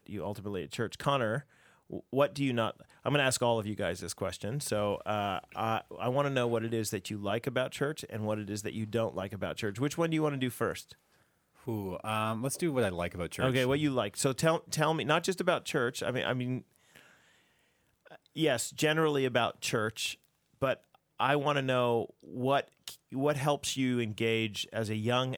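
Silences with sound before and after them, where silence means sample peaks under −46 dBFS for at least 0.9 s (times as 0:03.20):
0:16.99–0:18.07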